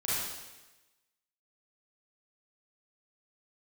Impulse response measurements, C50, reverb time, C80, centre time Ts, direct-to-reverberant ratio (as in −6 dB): −4.5 dB, 1.1 s, 0.0 dB, 103 ms, −10.0 dB